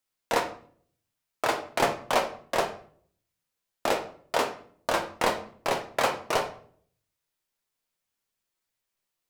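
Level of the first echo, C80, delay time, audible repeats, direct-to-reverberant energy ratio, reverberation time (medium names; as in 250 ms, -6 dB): no echo, 15.5 dB, no echo, no echo, 3.0 dB, 0.55 s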